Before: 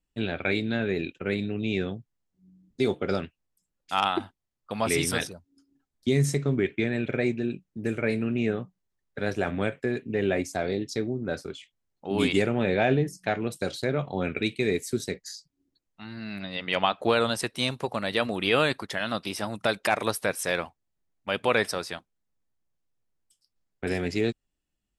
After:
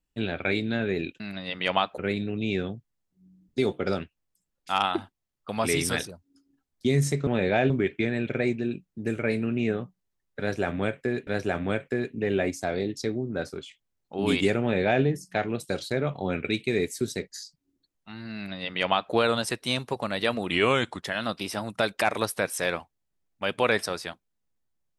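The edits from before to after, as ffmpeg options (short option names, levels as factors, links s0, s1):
-filter_complex "[0:a]asplit=8[s0][s1][s2][s3][s4][s5][s6][s7];[s0]atrim=end=1.202[s8];[s1]atrim=start=16.268:end=17.052[s9];[s2]atrim=start=1.198:end=6.492[s10];[s3]atrim=start=12.528:end=12.962[s11];[s4]atrim=start=6.488:end=10.062[s12];[s5]atrim=start=9.188:end=18.434[s13];[s6]atrim=start=18.43:end=18.9,asetpts=PTS-STARTPTS,asetrate=38808,aresample=44100,atrim=end_sample=23553,asetpts=PTS-STARTPTS[s14];[s7]atrim=start=18.896[s15];[s8][s9]acrossfade=d=0.004:c1=hsin:c2=hsin[s16];[s16][s10]acrossfade=d=0.004:c1=hsin:c2=hsin[s17];[s17][s11]acrossfade=d=0.004:c1=hsin:c2=hsin[s18];[s18][s12]acrossfade=d=0.004:c1=hsin:c2=hsin[s19];[s19][s13]acrossfade=d=0.004:c1=hsin:c2=hsin[s20];[s20][s14]acrossfade=d=0.004:c1=hsin:c2=hsin[s21];[s21][s15]acrossfade=d=0.004:c1=hsin:c2=hsin"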